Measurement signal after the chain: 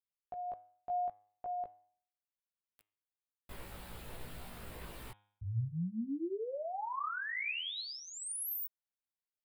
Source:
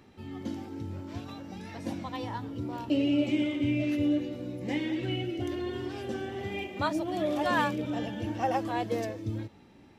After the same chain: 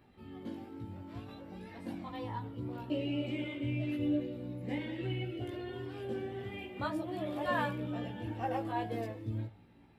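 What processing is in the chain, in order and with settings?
parametric band 6,100 Hz −13.5 dB 0.66 octaves
multi-voice chorus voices 4, 0.25 Hz, delay 17 ms, depth 1.3 ms
hum removal 103.8 Hz, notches 37
level −2.5 dB

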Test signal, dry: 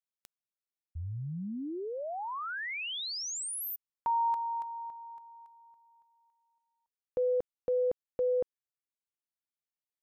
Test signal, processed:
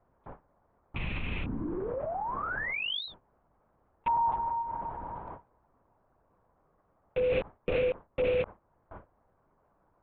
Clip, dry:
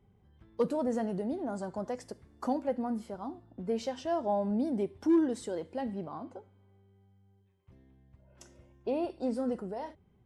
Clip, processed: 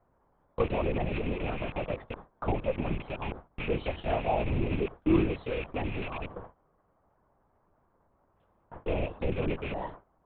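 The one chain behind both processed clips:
loose part that buzzes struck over −46 dBFS, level −29 dBFS
noise in a band 84–1,100 Hz −51 dBFS
linear-prediction vocoder at 8 kHz whisper
in parallel at +2.5 dB: downward compressor, threshold −45 dBFS
on the sum: noise gate with hold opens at −32 dBFS, closes at −40 dBFS, hold 38 ms, range −26 dB

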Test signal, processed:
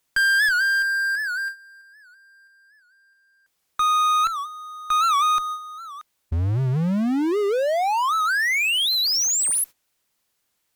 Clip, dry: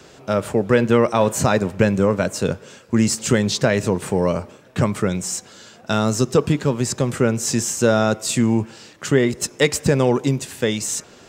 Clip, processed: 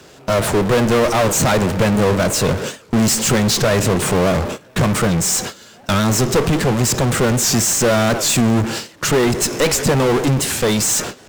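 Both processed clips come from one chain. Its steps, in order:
noise gate −37 dBFS, range −37 dB
power curve on the samples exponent 0.5
asymmetric clip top −19.5 dBFS
wow of a warped record 78 rpm, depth 160 cents

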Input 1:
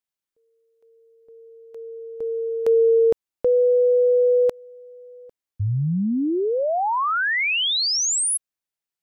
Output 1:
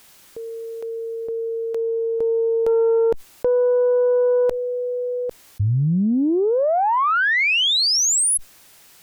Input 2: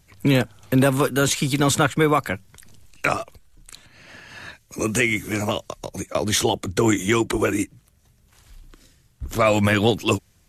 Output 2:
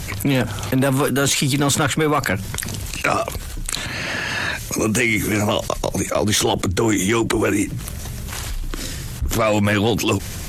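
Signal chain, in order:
harmonic generator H 5 −22 dB, 6 −23 dB, 7 −42 dB, 8 −32 dB, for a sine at −5.5 dBFS
envelope flattener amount 70%
level −2.5 dB

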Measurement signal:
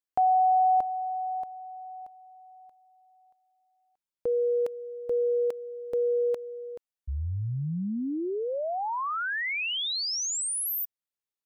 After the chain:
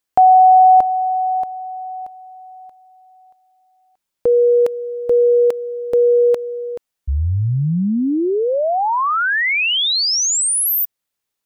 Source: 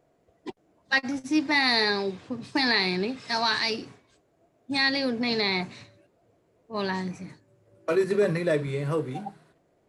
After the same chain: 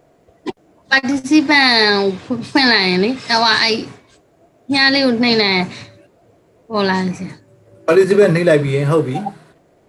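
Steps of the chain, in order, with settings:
boost into a limiter +14 dB
level −1 dB

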